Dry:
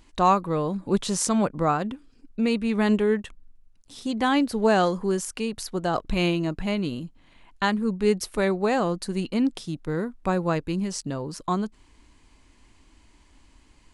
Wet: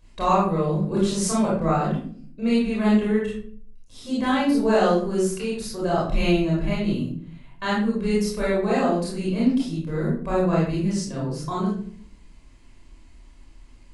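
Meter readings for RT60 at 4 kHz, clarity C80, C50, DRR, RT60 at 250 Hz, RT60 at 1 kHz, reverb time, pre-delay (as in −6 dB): 0.35 s, 6.0 dB, 1.0 dB, −7.0 dB, 0.75 s, 0.45 s, 0.50 s, 24 ms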